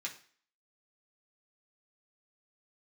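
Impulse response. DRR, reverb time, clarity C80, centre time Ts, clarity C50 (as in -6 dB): -3.0 dB, 0.45 s, 16.0 dB, 15 ms, 11.5 dB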